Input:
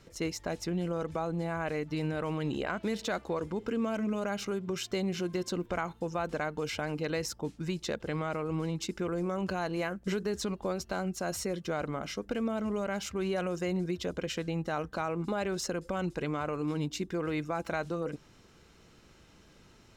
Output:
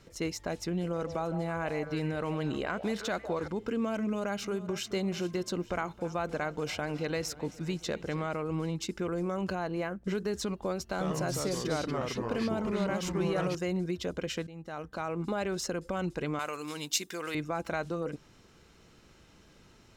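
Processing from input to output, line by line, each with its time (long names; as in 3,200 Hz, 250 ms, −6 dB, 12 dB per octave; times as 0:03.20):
0:00.55–0:03.48: echo through a band-pass that steps 158 ms, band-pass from 640 Hz, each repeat 1.4 octaves, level −6.5 dB
0:04.00–0:04.84: delay throw 430 ms, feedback 45%, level −14.5 dB
0:05.54–0:08.27: feedback echo with a swinging delay time 268 ms, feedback 63%, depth 78 cents, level −18 dB
0:09.55–0:10.15: high-shelf EQ 2,400 Hz −8 dB
0:10.88–0:13.55: delay with pitch and tempo change per echo 89 ms, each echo −3 semitones, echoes 2
0:14.47–0:15.22: fade in, from −16.5 dB
0:16.39–0:17.35: spectral tilt +4.5 dB per octave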